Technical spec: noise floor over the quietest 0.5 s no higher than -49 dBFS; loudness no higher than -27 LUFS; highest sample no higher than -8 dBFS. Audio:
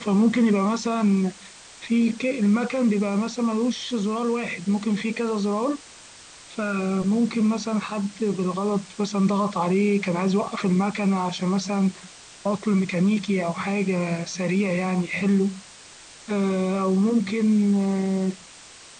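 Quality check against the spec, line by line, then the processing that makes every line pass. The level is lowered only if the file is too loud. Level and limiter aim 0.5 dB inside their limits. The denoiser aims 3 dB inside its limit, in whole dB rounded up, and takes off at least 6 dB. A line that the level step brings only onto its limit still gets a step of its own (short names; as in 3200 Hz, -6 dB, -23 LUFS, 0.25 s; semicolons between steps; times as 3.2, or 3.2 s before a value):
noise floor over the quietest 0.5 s -46 dBFS: fail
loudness -23.5 LUFS: fail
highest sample -10.5 dBFS: OK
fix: gain -4 dB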